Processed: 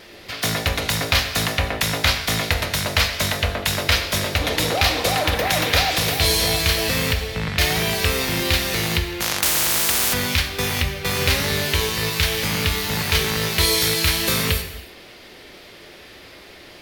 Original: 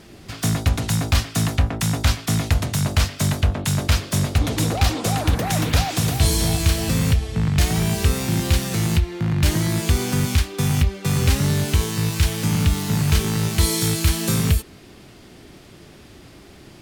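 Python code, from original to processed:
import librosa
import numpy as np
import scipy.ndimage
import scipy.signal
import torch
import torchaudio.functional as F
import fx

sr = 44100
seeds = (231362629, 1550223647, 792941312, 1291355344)

y = fx.high_shelf(x, sr, hz=3300.0, db=11.0)
y = fx.vibrato(y, sr, rate_hz=3.6, depth_cents=9.4)
y = fx.graphic_eq(y, sr, hz=(125, 250, 500, 1000, 2000, 4000, 8000), db=(-6, -3, 9, 3, 8, 5, -9))
y = fx.rev_gated(y, sr, seeds[0], gate_ms=350, shape='falling', drr_db=6.5)
y = fx.spectral_comp(y, sr, ratio=10.0, at=(9.2, 10.12), fade=0.02)
y = y * librosa.db_to_amplitude(-4.0)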